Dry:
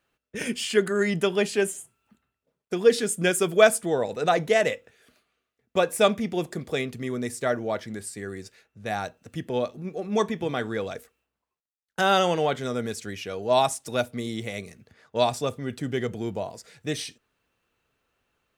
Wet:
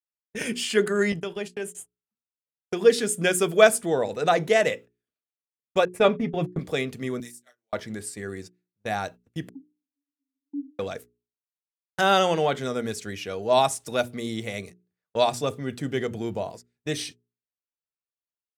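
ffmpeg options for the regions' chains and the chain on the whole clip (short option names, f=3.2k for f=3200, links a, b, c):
-filter_complex "[0:a]asettb=1/sr,asplit=3[a][b][c];[a]atrim=end=1.124[d];[b]atrim=start=1.12:end=1.75,asetpts=PTS-STARTPTS,afade=t=in:d=0.004:c=qsin,afade=t=out:st=0.626:d=0.004:c=qsin,agate=range=-34dB:threshold=-31dB:ratio=16:release=100:detection=peak,acompressor=threshold=-31dB:ratio=3:attack=3.2:release=140:knee=1:detection=peak[e];[c]atrim=start=1.746[f];[d][e]acrossfade=d=0.004:c1=hsin:c2=qsin[g];[g][f]acrossfade=d=0.004:c1=qsin:c2=hsin,asettb=1/sr,asplit=3[h][i][j];[h]atrim=end=5.854[k];[i]atrim=start=5.85:end=6.59,asetpts=PTS-STARTPTS,afade=t=in:d=0.004:c=qsin,afade=t=out:st=0.736:d=0.004:c=qsin,agate=range=-42dB:threshold=-33dB:ratio=16:release=100:detection=peak,bass=f=250:g=6,treble=f=4k:g=-15,aecho=1:1:7.2:0.52,atrim=end_sample=32634[l];[j]atrim=start=6.586[m];[k][l]acrossfade=d=0.004:c1=hsin:c2=qsin[n];[n][m]acrossfade=d=0.004:c1=qsin:c2=hsin,asettb=1/sr,asplit=3[o][p][q];[o]atrim=end=7.204[r];[p]atrim=start=7.2:end=7.73,asetpts=PTS-STARTPTS,afade=t=in:d=0.004:c=qsin,afade=t=out:st=0.526:d=0.004:c=qsin,aderivative,acompressor=threshold=-40dB:ratio=4:attack=3.2:release=140:knee=1:detection=peak,asplit=2[s][t];[t]adelay=32,volume=-4dB[u];[s][u]amix=inputs=2:normalize=0,atrim=end_sample=23373[v];[q]atrim=start=7.726[w];[r][v]acrossfade=d=0.004:c1=hsin:c2=qsin[x];[x][w]acrossfade=d=0.004:c1=qsin:c2=hsin,asettb=1/sr,asplit=3[y][z][aa];[y]atrim=end=9.494[ab];[z]atrim=start=9.49:end=10.79,asetpts=PTS-STARTPTS,afade=t=in:d=0.004:c=qsin,afade=t=out:st=1.296:d=0.004:c=qsin,asuperpass=centerf=280:order=20:qfactor=7.6,acontrast=53[ac];[aa]atrim=start=10.786[ad];[ab][ac]acrossfade=d=0.004:c1=hsin:c2=qsin[ae];[ae][ad]acrossfade=d=0.004:c1=qsin:c2=hsin,agate=range=-35dB:threshold=-40dB:ratio=16:detection=peak,bandreject=f=60:t=h:w=6,bandreject=f=120:t=h:w=6,bandreject=f=180:t=h:w=6,bandreject=f=240:t=h:w=6,bandreject=f=300:t=h:w=6,bandreject=f=360:t=h:w=6,bandreject=f=420:t=h:w=6,volume=1dB"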